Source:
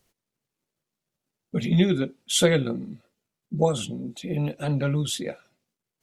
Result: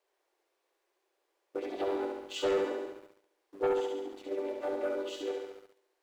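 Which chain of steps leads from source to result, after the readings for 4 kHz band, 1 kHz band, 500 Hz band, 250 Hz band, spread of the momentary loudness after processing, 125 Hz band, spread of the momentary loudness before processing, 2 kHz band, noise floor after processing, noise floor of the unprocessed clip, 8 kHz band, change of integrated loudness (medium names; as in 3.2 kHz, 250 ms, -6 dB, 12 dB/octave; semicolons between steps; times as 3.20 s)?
-14.5 dB, -4.0 dB, -4.0 dB, -14.0 dB, 12 LU, under -35 dB, 13 LU, -10.5 dB, -80 dBFS, under -85 dBFS, -21.0 dB, -9.5 dB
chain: vocoder on a held chord major triad, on G3; added noise pink -65 dBFS; band-stop 1.3 kHz, Q 15; saturation -17.5 dBFS, distortion -12 dB; elliptic high-pass 350 Hz, stop band 40 dB; tilt EQ -2 dB/octave; on a send: flutter echo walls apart 11.9 m, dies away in 0.99 s; on the sum: waveshaping leveller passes 2; trim -8 dB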